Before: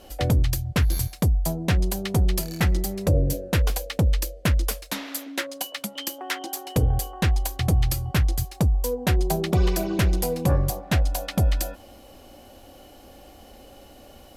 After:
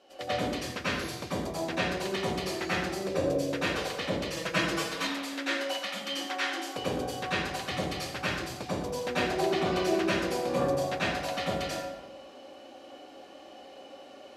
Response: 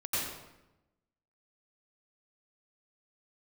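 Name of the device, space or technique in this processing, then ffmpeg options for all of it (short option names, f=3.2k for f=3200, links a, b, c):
supermarket ceiling speaker: -filter_complex "[0:a]highpass=340,lowpass=5.3k[a];[1:a]atrim=start_sample=2205[b];[a][b]afir=irnorm=-1:irlink=0,asettb=1/sr,asplit=3[c][d][e];[c]atrim=end=4.364[f];[d]atrim=start=4.36:end=5.07,asetpts=PTS-STARTPTS,afade=t=in:d=0.004:c=qsin,afade=t=out:st=0.706:d=0.004:c=qsin,aecho=1:1:6.1:0.96,atrim=end_sample=31311[g];[e]atrim=start=5.066[h];[f][g]acrossfade=d=0.004:c1=hsin:c2=qsin[i];[i][h]acrossfade=d=0.004:c1=qsin:c2=hsin,volume=-5.5dB"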